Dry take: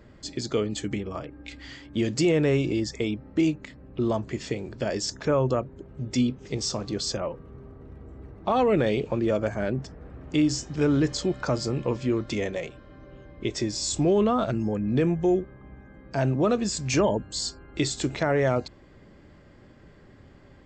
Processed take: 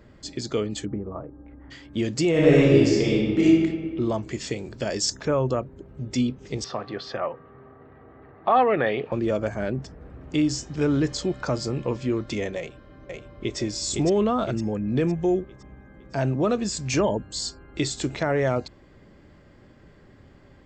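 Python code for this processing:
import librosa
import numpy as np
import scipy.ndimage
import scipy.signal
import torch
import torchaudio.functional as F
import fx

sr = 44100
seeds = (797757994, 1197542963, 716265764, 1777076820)

y = fx.lowpass(x, sr, hz=1200.0, slope=24, at=(0.84, 1.7), fade=0.02)
y = fx.reverb_throw(y, sr, start_s=2.3, length_s=1.15, rt60_s=1.7, drr_db=-6.0)
y = fx.high_shelf(y, sr, hz=4100.0, db=8.5, at=(4.18, 5.21))
y = fx.cabinet(y, sr, low_hz=150.0, low_slope=12, high_hz=3700.0, hz=(190.0, 310.0, 740.0, 1200.0, 1800.0), db=(-8, -4, 7, 7, 9), at=(6.64, 9.12))
y = fx.echo_throw(y, sr, start_s=12.58, length_s=1.0, ms=510, feedback_pct=45, wet_db=-3.0)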